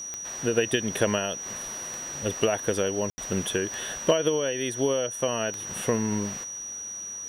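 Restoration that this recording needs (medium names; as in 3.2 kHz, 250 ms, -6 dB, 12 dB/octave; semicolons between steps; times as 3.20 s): de-click; band-stop 5.8 kHz, Q 30; room tone fill 3.10–3.18 s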